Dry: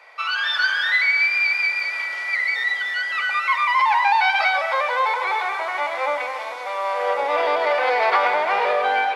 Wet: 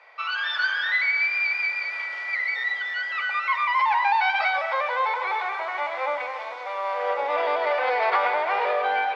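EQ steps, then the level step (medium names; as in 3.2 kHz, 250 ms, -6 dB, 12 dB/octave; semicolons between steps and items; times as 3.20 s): high-pass 300 Hz 12 dB/octave; distance through air 120 m; -3.0 dB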